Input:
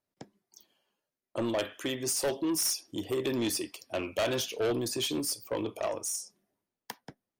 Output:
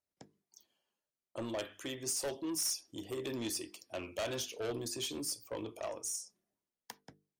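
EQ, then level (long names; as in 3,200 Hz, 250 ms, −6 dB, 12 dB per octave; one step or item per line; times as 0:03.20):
parametric band 64 Hz +5.5 dB 0.97 octaves
parametric band 7,000 Hz +4.5 dB 1 octave
mains-hum notches 50/100/150/200/250/300/350/400/450 Hz
−8.0 dB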